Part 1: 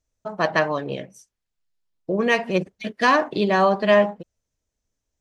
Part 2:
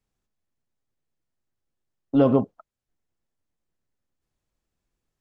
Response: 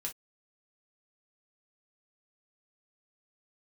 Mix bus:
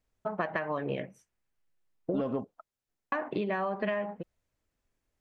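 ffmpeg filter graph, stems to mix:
-filter_complex "[0:a]highshelf=f=3300:t=q:w=1.5:g=-12.5,acompressor=threshold=0.1:ratio=6,volume=0.841,asplit=3[s0][s1][s2];[s0]atrim=end=2.21,asetpts=PTS-STARTPTS,afade=t=out:st=2.206:d=0.004:c=hsin[s3];[s1]atrim=start=2.21:end=3.12,asetpts=PTS-STARTPTS,volume=0[s4];[s2]atrim=start=3.12,asetpts=PTS-STARTPTS,afade=t=in:d=0.004:c=hsin[s5];[s3][s4][s5]concat=n=3:v=0:a=1[s6];[1:a]lowshelf=f=230:g=-7,acontrast=38,volume=0.447[s7];[s6][s7]amix=inputs=2:normalize=0,acompressor=threshold=0.0398:ratio=6"

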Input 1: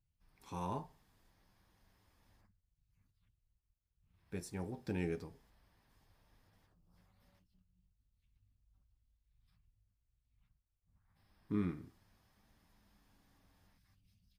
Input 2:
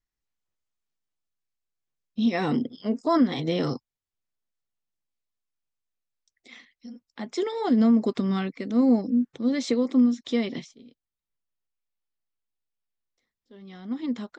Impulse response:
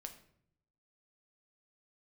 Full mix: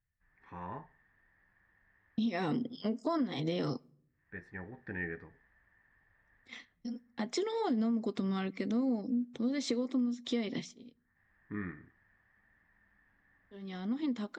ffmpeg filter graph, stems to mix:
-filter_complex "[0:a]lowpass=f=1800:t=q:w=13,volume=0.596[s0];[1:a]agate=range=0.0224:threshold=0.00708:ratio=3:detection=peak,acompressor=threshold=0.02:ratio=4,volume=1.12,asplit=3[s1][s2][s3];[s2]volume=0.251[s4];[s3]apad=whole_len=634192[s5];[s0][s5]sidechaincompress=threshold=0.00398:ratio=8:attack=16:release=610[s6];[2:a]atrim=start_sample=2205[s7];[s4][s7]afir=irnorm=-1:irlink=0[s8];[s6][s1][s8]amix=inputs=3:normalize=0"

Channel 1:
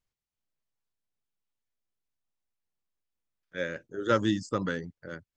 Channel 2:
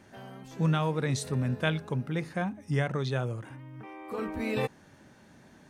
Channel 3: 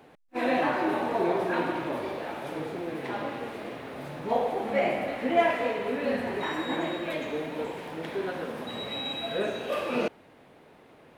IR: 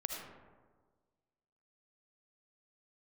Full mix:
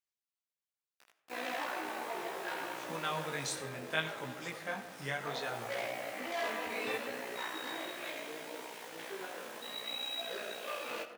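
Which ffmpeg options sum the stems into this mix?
-filter_complex "[0:a]acompressor=threshold=0.0251:ratio=6,asoftclip=type=tanh:threshold=0.0188,volume=0.841,asplit=2[s0][s1];[1:a]adelay=2300,volume=0.841,asplit=2[s2][s3];[s3]volume=0.596[s4];[2:a]tremolo=f=60:d=0.71,asoftclip=type=hard:threshold=0.0422,acrusher=bits=7:mix=0:aa=0.000001,adelay=950,volume=0.841,asplit=2[s5][s6];[s6]volume=0.596[s7];[s1]apad=whole_len=534931[s8];[s5][s8]sidechaincompress=threshold=0.00447:ratio=8:attack=16:release=757[s9];[3:a]atrim=start_sample=2205[s10];[s4][s7]amix=inputs=2:normalize=0[s11];[s11][s10]afir=irnorm=-1:irlink=0[s12];[s0][s2][s9][s12]amix=inputs=4:normalize=0,highpass=f=1200:p=1,flanger=delay=16:depth=6.3:speed=0.69"

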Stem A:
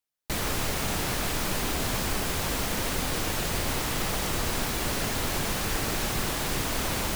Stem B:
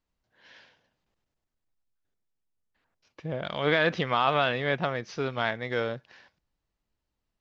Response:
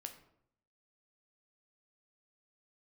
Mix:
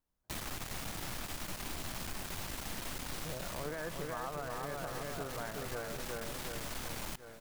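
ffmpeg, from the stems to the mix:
-filter_complex "[0:a]equalizer=f=450:t=o:w=0.4:g=-7,aeval=exprs='(tanh(39.8*val(0)+0.8)-tanh(0.8))/39.8':c=same,volume=1,asplit=2[s0][s1];[s1]volume=0.0708[s2];[1:a]lowpass=f=1700:w=0.5412,lowpass=f=1700:w=1.3066,volume=0.668,asplit=2[s3][s4];[s4]volume=0.668[s5];[s2][s5]amix=inputs=2:normalize=0,aecho=0:1:367|734|1101|1468|1835|2202|2569:1|0.51|0.26|0.133|0.0677|0.0345|0.0176[s6];[s0][s3][s6]amix=inputs=3:normalize=0,acompressor=threshold=0.0141:ratio=6"

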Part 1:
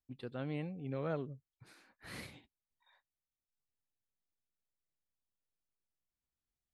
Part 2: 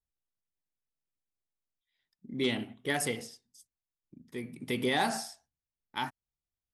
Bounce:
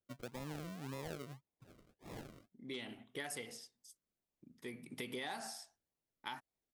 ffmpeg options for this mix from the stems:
-filter_complex "[0:a]highpass=f=110:w=0.5412,highpass=f=110:w=1.3066,acrusher=samples=41:mix=1:aa=0.000001:lfo=1:lforange=24.6:lforate=1.8,volume=0.891,asplit=2[s0][s1];[1:a]lowshelf=f=330:g=-8,adelay=300,volume=0.794[s2];[s1]apad=whole_len=310189[s3];[s2][s3]sidechaincompress=threshold=0.002:ratio=8:attack=16:release=1180[s4];[s0][s4]amix=inputs=2:normalize=0,acompressor=threshold=0.00794:ratio=4"

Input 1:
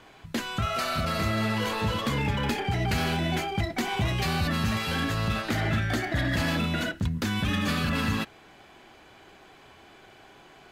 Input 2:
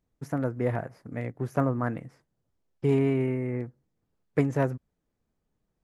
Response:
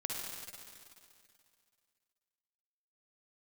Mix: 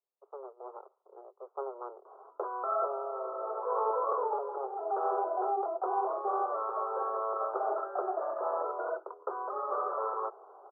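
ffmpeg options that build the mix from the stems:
-filter_complex "[0:a]aeval=exprs='val(0)+0.01*(sin(2*PI*60*n/s)+sin(2*PI*2*60*n/s)/2+sin(2*PI*3*60*n/s)/3+sin(2*PI*4*60*n/s)/4+sin(2*PI*5*60*n/s)/5)':c=same,adelay=2050,volume=0.944[s0];[1:a]equalizer=f=540:t=o:w=0.63:g=-4,aeval=exprs='abs(val(0))':c=same,volume=0.335,asplit=2[s1][s2];[s2]apad=whole_len=562760[s3];[s0][s3]sidechaincompress=threshold=0.00794:ratio=8:attack=45:release=333[s4];[s4][s1]amix=inputs=2:normalize=0,dynaudnorm=f=140:g=17:m=1.5,asuperpass=centerf=710:order=20:qfactor=0.76"

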